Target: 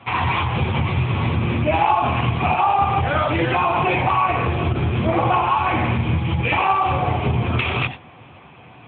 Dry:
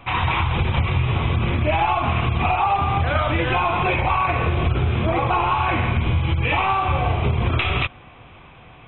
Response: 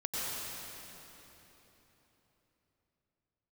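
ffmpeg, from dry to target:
-filter_complex "[1:a]atrim=start_sample=2205,atrim=end_sample=3969[a];[0:a][a]afir=irnorm=-1:irlink=0,volume=5dB" -ar 8000 -c:a libopencore_amrnb -b:a 10200

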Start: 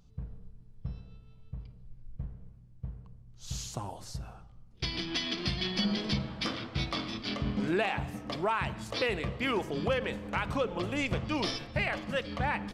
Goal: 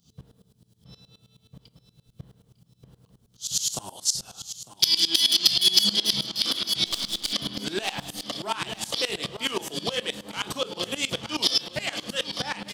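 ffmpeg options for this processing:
-filter_complex "[0:a]highpass=170,acrossover=split=250[a][b];[a]acompressor=mode=upward:threshold=-53dB:ratio=2.5[c];[b]asplit=2[d][e];[e]adelay=30,volume=-6.5dB[f];[d][f]amix=inputs=2:normalize=0[g];[c][g]amix=inputs=2:normalize=0,asettb=1/sr,asplit=3[h][i][j];[h]atrim=end=4.054[k];[i]atrim=start=4.05:end=5.93,asetpts=PTS-STARTPTS,afade=t=in:d=0.004:c=qsin,afade=t=out:st=1.876:d=0.004:c=qsin,equalizer=f=6.5k:t=o:w=1.6:g=8.5[l];[j]atrim=start=5.926[m];[k][l]acrossfade=d=0.004:c1=hsin:c2=qsin[n];[n][m]acrossfade=d=0.004:c1=qsin:c2=hsin,asettb=1/sr,asplit=3[o][p][q];[o]atrim=end=6.864[r];[p]atrim=start=6.86:end=7.33,asetpts=PTS-STARTPTS,afade=t=in:d=0.004:c=qsin,afade=t=out:st=0.466:d=0.004:c=qsin,aeval=exprs='max(val(0),0)':c=same[s];[q]atrim=start=7.326[t];[r][s]acrossfade=d=0.004:c1=hsin:c2=qsin[u];[u][t]acrossfade=d=0.004:c1=qsin:c2=hsin,equalizer=f=3.1k:t=o:w=0.45:g=10.5,asoftclip=type=tanh:threshold=-17.5dB,aecho=1:1:901|1802|2703|3604:0.251|0.0904|0.0326|0.0117,asplit=2[v][w];[w]alimiter=limit=-23dB:level=0:latency=1:release=35,volume=2dB[x];[v][x]amix=inputs=2:normalize=0,aexciter=amount=6.6:drive=2.6:freq=3.7k,aeval=exprs='val(0)*pow(10,-20*if(lt(mod(-9.5*n/s,1),2*abs(-9.5)/1000),1-mod(-9.5*n/s,1)/(2*abs(-9.5)/1000),(mod(-9.5*n/s,1)-2*abs(-9.5)/1000)/(1-2*abs(-9.5)/1000))/20)':c=same,volume=-1dB"

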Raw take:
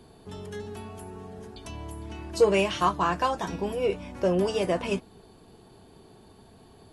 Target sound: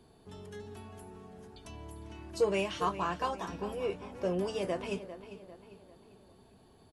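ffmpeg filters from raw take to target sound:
-filter_complex "[0:a]asplit=2[a][b];[b]adelay=398,lowpass=f=3.9k:p=1,volume=-12.5dB,asplit=2[c][d];[d]adelay=398,lowpass=f=3.9k:p=1,volume=0.46,asplit=2[e][f];[f]adelay=398,lowpass=f=3.9k:p=1,volume=0.46,asplit=2[g][h];[h]adelay=398,lowpass=f=3.9k:p=1,volume=0.46,asplit=2[i][j];[j]adelay=398,lowpass=f=3.9k:p=1,volume=0.46[k];[a][c][e][g][i][k]amix=inputs=6:normalize=0,volume=-8dB"

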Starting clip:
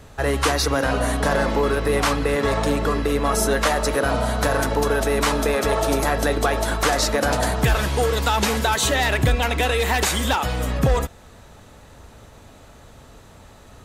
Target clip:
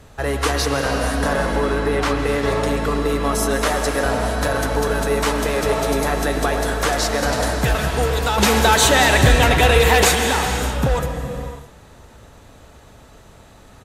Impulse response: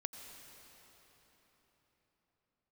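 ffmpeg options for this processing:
-filter_complex "[0:a]asettb=1/sr,asplit=3[a][b][c];[a]atrim=end=1.564[d];[b]atrim=start=1.56:end=2.25,asetpts=PTS-STARTPTS,afade=t=in:d=0.004:c=qsin,afade=t=out:st=0.686:d=0.004:c=qsin,highshelf=f=8.2k:g=-10.5[e];[c]atrim=start=2.246[f];[d][e]acrossfade=d=0.004:c1=hsin:c2=qsin[g];[g][f]acrossfade=d=0.004:c1=qsin:c2=hsin,asettb=1/sr,asplit=3[h][i][j];[h]atrim=end=8.384[k];[i]atrim=start=8.38:end=10.15,asetpts=PTS-STARTPTS,afade=t=in:d=0.004:c=qsin,afade=t=out:st=1.766:d=0.004:c=qsin,acontrast=73[l];[j]atrim=start=10.146[m];[k][l]acrossfade=d=0.004:c1=hsin:c2=qsin[n];[n][m]acrossfade=d=0.004:c1=qsin:c2=hsin,asplit=2[o][p];[p]adelay=110,highpass=300,lowpass=3.4k,asoftclip=type=hard:threshold=-12.5dB,volume=-11dB[q];[o][q]amix=inputs=2:normalize=0[r];[1:a]atrim=start_sample=2205,afade=t=out:st=0.45:d=0.01,atrim=end_sample=20286,asetrate=28224,aresample=44100[s];[r][s]afir=irnorm=-1:irlink=0"

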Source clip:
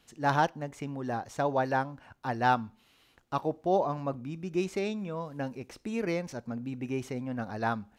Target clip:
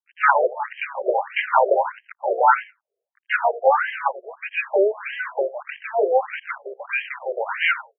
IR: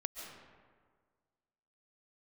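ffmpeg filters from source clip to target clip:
-filter_complex "[0:a]atempo=1,aecho=1:1:2.1:0.8,acrossover=split=220[a][b];[b]acrusher=bits=6:mix=0:aa=0.000001[c];[a][c]amix=inputs=2:normalize=0,asuperstop=centerf=3300:order=8:qfactor=2.7,bandreject=f=50:t=h:w=6,bandreject=f=100:t=h:w=6,bandreject=f=150:t=h:w=6,bandreject=f=200:t=h:w=6,bandreject=f=250:t=h:w=6,bandreject=f=300:t=h:w=6,aecho=1:1:85|170:0.1|0.019,asplit=4[d][e][f][g];[e]asetrate=29433,aresample=44100,atempo=1.49831,volume=-6dB[h];[f]asetrate=66075,aresample=44100,atempo=0.66742,volume=-6dB[i];[g]asetrate=88200,aresample=44100,atempo=0.5,volume=-18dB[j];[d][h][i][j]amix=inputs=4:normalize=0,crystalizer=i=6:c=0,alimiter=level_in=11dB:limit=-1dB:release=50:level=0:latency=1,afftfilt=real='re*between(b*sr/1024,490*pow(2300/490,0.5+0.5*sin(2*PI*1.6*pts/sr))/1.41,490*pow(2300/490,0.5+0.5*sin(2*PI*1.6*pts/sr))*1.41)':imag='im*between(b*sr/1024,490*pow(2300/490,0.5+0.5*sin(2*PI*1.6*pts/sr))/1.41,490*pow(2300/490,0.5+0.5*sin(2*PI*1.6*pts/sr))*1.41)':win_size=1024:overlap=0.75,volume=1.5dB"

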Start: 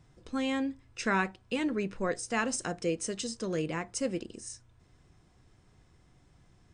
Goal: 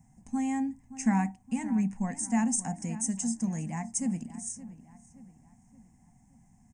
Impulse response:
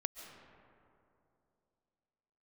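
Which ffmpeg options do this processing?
-filter_complex "[0:a]firequalizer=gain_entry='entry(110,0);entry(230,14);entry(340,-15);entry(510,-17);entry(780,9);entry(1300,-16);entry(1900,-1);entry(3700,-22);entry(6600,9)':delay=0.05:min_phase=1,asplit=2[a][b];[b]adelay=572,lowpass=f=2.8k:p=1,volume=-15dB,asplit=2[c][d];[d]adelay=572,lowpass=f=2.8k:p=1,volume=0.47,asplit=2[e][f];[f]adelay=572,lowpass=f=2.8k:p=1,volume=0.47,asplit=2[g][h];[h]adelay=572,lowpass=f=2.8k:p=1,volume=0.47[i];[a][c][e][g][i]amix=inputs=5:normalize=0,volume=-2.5dB"

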